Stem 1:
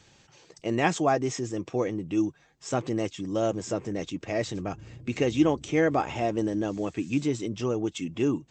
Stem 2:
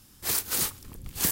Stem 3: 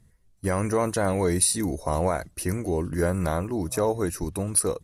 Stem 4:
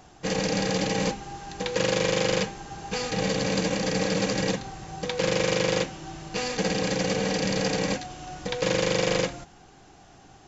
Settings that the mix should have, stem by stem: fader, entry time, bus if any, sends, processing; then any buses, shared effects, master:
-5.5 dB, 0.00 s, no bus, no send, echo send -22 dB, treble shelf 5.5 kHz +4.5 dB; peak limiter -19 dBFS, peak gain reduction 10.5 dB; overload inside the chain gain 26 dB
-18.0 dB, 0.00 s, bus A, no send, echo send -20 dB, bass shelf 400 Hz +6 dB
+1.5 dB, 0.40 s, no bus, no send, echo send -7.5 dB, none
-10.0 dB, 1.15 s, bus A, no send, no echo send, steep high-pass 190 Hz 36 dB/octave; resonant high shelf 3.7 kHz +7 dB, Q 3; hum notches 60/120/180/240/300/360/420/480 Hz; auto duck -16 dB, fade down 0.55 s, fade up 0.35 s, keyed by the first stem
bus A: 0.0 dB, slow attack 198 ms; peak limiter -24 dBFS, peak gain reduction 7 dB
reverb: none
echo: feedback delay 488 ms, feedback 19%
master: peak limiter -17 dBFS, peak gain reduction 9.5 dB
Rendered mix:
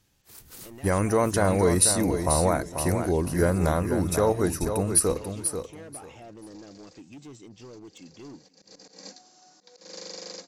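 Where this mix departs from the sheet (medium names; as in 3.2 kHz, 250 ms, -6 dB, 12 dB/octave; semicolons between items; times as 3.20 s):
stem 1 -5.5 dB -> -14.5 dB; stem 4 -10.0 dB -> -18.0 dB; master: missing peak limiter -17 dBFS, peak gain reduction 9.5 dB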